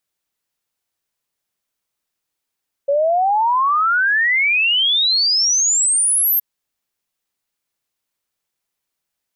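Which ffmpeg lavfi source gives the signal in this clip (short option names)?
-f lavfi -i "aevalsrc='0.224*clip(min(t,3.52-t)/0.01,0,1)*sin(2*PI*550*3.52/log(13000/550)*(exp(log(13000/550)*t/3.52)-1))':d=3.52:s=44100"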